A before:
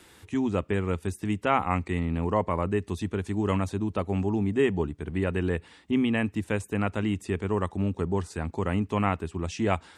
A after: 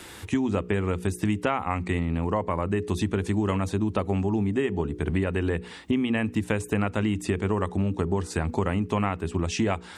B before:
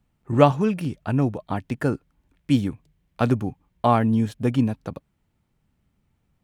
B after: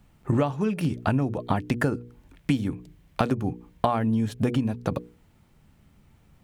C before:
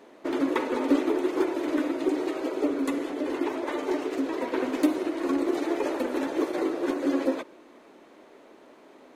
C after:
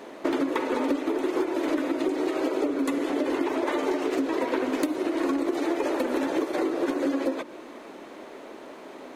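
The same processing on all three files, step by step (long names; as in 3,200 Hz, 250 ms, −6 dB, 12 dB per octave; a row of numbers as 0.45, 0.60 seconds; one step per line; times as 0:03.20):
mains-hum notches 60/120/180/240/300/360/420/480 Hz
downward compressor 20 to 1, threshold −32 dBFS
loudness normalisation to −27 LKFS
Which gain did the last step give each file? +11.0, +12.0, +10.0 decibels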